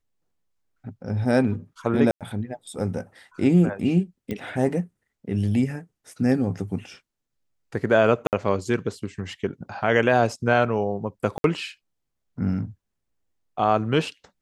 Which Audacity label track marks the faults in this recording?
2.110000	2.210000	gap 97 ms
4.310000	4.310000	pop -18 dBFS
8.270000	8.330000	gap 58 ms
11.380000	11.440000	gap 62 ms

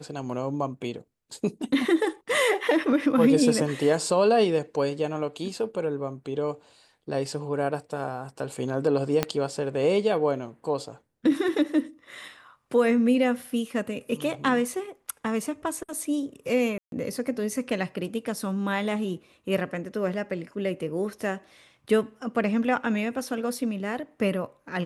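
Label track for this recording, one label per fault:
9.230000	9.230000	pop -8 dBFS
16.780000	16.920000	gap 0.142 s

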